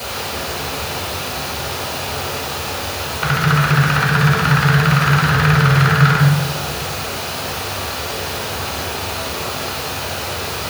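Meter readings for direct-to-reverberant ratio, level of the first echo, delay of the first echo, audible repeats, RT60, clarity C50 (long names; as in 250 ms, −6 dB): −6.0 dB, no echo audible, no echo audible, no echo audible, 1.1 s, 1.0 dB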